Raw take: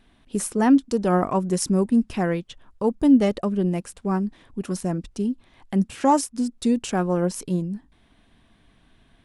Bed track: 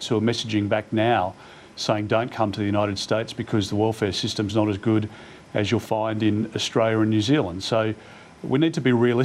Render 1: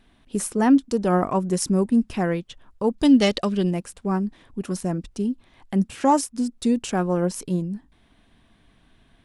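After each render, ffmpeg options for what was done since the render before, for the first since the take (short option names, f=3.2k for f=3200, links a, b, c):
-filter_complex "[0:a]asettb=1/sr,asplit=3[a][b][c];[a]atrim=end=2.984[d];[b]atrim=start=2.98:end=3.71,asetpts=PTS-STARTPTS,afade=t=in:d=0.004:c=qsin,afade=t=out:st=0.726:d=0.004:c=qsin,equalizer=f=4.2k:t=o:w=2.2:g=14.5[e];[c]atrim=start=3.706[f];[d][e]acrossfade=d=0.004:c1=hsin:c2=qsin[g];[g][f]acrossfade=d=0.004:c1=qsin:c2=hsin"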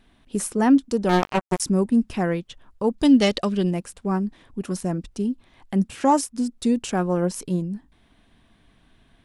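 -filter_complex "[0:a]asettb=1/sr,asplit=3[a][b][c];[a]atrim=end=1.094[d];[b]atrim=start=1.09:end=1.6,asetpts=PTS-STARTPTS,afade=t=in:d=0.004:c=qsin,afade=t=out:st=0.506:d=0.004:c=qsin,acrusher=bits=2:mix=0:aa=0.5[e];[c]atrim=start=1.596[f];[d][e]acrossfade=d=0.004:c1=hsin:c2=qsin[g];[g][f]acrossfade=d=0.004:c1=qsin:c2=hsin"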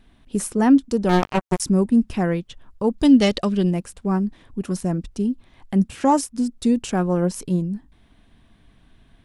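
-af "lowshelf=f=190:g=6"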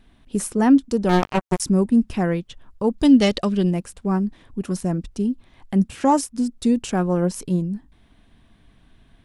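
-af anull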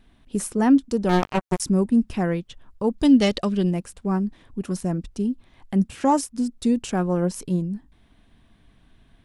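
-af "volume=-2dB"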